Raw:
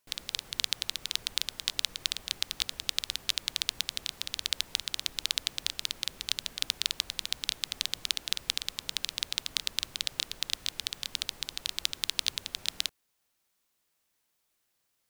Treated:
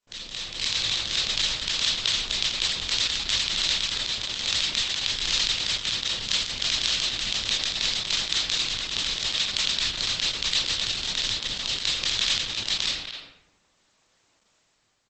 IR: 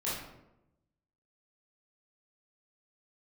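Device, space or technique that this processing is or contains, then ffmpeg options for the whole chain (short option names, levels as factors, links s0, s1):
speakerphone in a meeting room: -filter_complex "[1:a]atrim=start_sample=2205[s0];[0:a][s0]afir=irnorm=-1:irlink=0,asplit=2[s1][s2];[s2]adelay=250,highpass=300,lowpass=3400,asoftclip=type=hard:threshold=0.141,volume=0.447[s3];[s1][s3]amix=inputs=2:normalize=0,dynaudnorm=f=150:g=9:m=4.22,volume=0.841" -ar 48000 -c:a libopus -b:a 12k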